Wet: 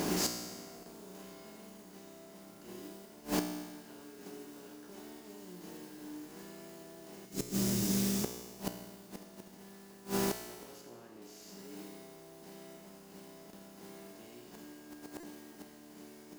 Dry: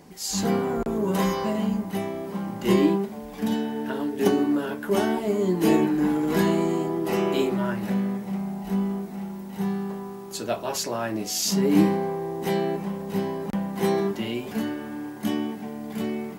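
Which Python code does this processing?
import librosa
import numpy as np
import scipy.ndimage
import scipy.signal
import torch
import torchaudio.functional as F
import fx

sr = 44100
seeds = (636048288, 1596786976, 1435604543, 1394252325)

y = fx.bin_compress(x, sr, power=0.4)
y = fx.curve_eq(y, sr, hz=(140.0, 2100.0, 5700.0), db=(0, -27, 2), at=(7.25, 8.24))
y = fx.mod_noise(y, sr, seeds[0], snr_db=11)
y = fx.high_shelf(y, sr, hz=3400.0, db=-10.0, at=(10.81, 11.22))
y = fx.echo_wet_highpass(y, sr, ms=82, feedback_pct=31, hz=1900.0, wet_db=-8.0)
y = fx.gate_flip(y, sr, shuts_db=-12.0, range_db=-26)
y = fx.comb_fb(y, sr, f0_hz=60.0, decay_s=1.4, harmonics='all', damping=0.0, mix_pct=80)
y = fx.buffer_glitch(y, sr, at_s=(15.2,), block=128, repeats=10)
y = y * 10.0 ** (4.0 / 20.0)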